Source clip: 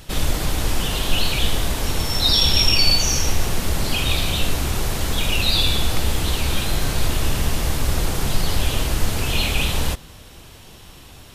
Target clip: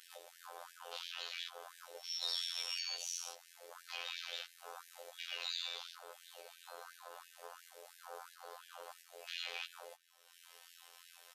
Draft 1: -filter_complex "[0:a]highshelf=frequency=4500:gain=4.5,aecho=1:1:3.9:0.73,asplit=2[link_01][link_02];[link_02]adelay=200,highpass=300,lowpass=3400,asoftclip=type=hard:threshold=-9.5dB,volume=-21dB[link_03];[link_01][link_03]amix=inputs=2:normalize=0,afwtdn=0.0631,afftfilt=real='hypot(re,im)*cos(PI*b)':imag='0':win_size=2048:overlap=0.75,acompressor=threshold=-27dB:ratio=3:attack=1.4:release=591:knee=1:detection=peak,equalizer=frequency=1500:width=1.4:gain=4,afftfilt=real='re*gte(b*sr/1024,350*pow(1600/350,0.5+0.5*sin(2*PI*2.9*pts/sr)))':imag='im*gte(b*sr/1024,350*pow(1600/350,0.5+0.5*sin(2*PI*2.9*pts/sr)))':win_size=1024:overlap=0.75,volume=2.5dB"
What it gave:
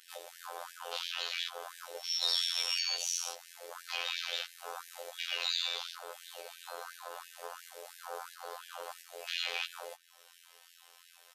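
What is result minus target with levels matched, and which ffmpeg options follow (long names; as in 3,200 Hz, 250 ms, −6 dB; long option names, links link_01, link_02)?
downward compressor: peak gain reduction −7.5 dB
-filter_complex "[0:a]highshelf=frequency=4500:gain=4.5,aecho=1:1:3.9:0.73,asplit=2[link_01][link_02];[link_02]adelay=200,highpass=300,lowpass=3400,asoftclip=type=hard:threshold=-9.5dB,volume=-21dB[link_03];[link_01][link_03]amix=inputs=2:normalize=0,afwtdn=0.0631,afftfilt=real='hypot(re,im)*cos(PI*b)':imag='0':win_size=2048:overlap=0.75,acompressor=threshold=-38.5dB:ratio=3:attack=1.4:release=591:knee=1:detection=peak,equalizer=frequency=1500:width=1.4:gain=4,afftfilt=real='re*gte(b*sr/1024,350*pow(1600/350,0.5+0.5*sin(2*PI*2.9*pts/sr)))':imag='im*gte(b*sr/1024,350*pow(1600/350,0.5+0.5*sin(2*PI*2.9*pts/sr)))':win_size=1024:overlap=0.75,volume=2.5dB"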